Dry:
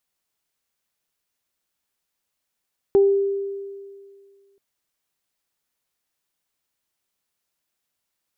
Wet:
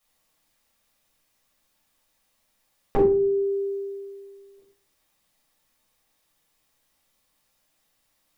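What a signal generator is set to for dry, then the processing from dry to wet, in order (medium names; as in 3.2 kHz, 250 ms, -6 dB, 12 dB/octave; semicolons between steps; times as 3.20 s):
additive tone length 1.63 s, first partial 396 Hz, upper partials -19 dB, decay 2.03 s, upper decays 0.36 s, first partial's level -10.5 dB
de-hum 48.6 Hz, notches 38; compression 2:1, threshold -32 dBFS; simulated room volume 290 m³, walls furnished, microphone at 6.2 m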